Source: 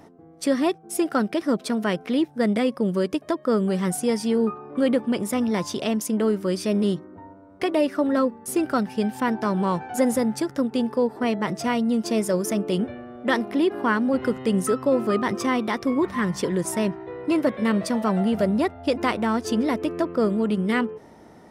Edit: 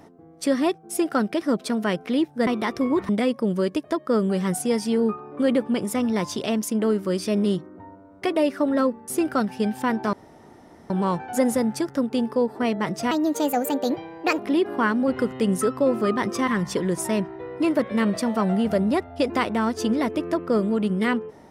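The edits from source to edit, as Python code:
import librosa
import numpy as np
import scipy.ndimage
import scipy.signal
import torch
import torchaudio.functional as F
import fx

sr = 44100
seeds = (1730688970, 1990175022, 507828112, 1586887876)

y = fx.edit(x, sr, fx.insert_room_tone(at_s=9.51, length_s=0.77),
    fx.speed_span(start_s=11.72, length_s=1.72, speed=1.35),
    fx.move(start_s=15.53, length_s=0.62, to_s=2.47), tone=tone)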